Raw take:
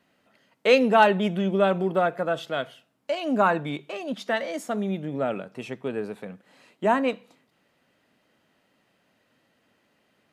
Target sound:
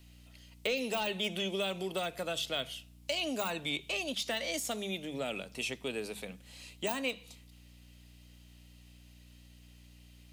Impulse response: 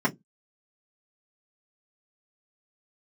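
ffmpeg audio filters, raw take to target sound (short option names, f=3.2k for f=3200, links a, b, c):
-filter_complex "[0:a]deesser=1,aeval=exprs='val(0)+0.00355*(sin(2*PI*60*n/s)+sin(2*PI*2*60*n/s)/2+sin(2*PI*3*60*n/s)/3+sin(2*PI*4*60*n/s)/4+sin(2*PI*5*60*n/s)/5)':c=same,acrossover=split=290|2600[a][b][c];[a]acompressor=threshold=-39dB:ratio=4[d];[b]acompressor=threshold=-29dB:ratio=4[e];[c]acompressor=threshold=-45dB:ratio=4[f];[d][e][f]amix=inputs=3:normalize=0,aexciter=amount=6.7:drive=3.6:freq=2.3k,bandreject=f=50.85:t=h:w=4,bandreject=f=101.7:t=h:w=4,bandreject=f=152.55:t=h:w=4,bandreject=f=203.4:t=h:w=4,volume=-6dB"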